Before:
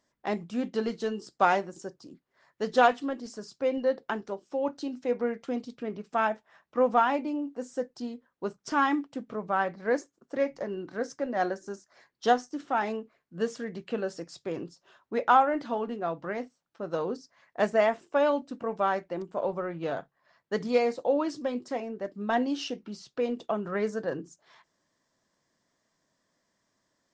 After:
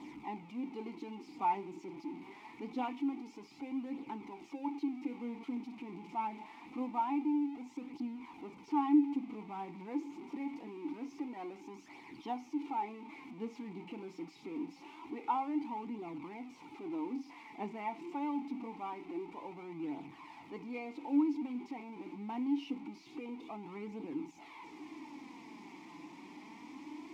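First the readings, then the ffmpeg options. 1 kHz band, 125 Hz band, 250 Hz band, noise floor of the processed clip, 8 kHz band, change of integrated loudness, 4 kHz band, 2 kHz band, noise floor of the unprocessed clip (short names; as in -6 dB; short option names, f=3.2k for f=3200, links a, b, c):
-10.5 dB, -10.5 dB, -2.5 dB, -56 dBFS, n/a, -10.0 dB, -14.0 dB, -17.5 dB, -78 dBFS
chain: -filter_complex "[0:a]aeval=exprs='val(0)+0.5*0.0282*sgn(val(0))':c=same,acrusher=bits=6:mode=log:mix=0:aa=0.000001,flanger=delay=0.2:depth=5.8:regen=43:speed=0.25:shape=triangular,asplit=3[a][b][c];[a]bandpass=f=300:t=q:w=8,volume=0dB[d];[b]bandpass=f=870:t=q:w=8,volume=-6dB[e];[c]bandpass=f=2.24k:t=q:w=8,volume=-9dB[f];[d][e][f]amix=inputs=3:normalize=0,volume=4dB"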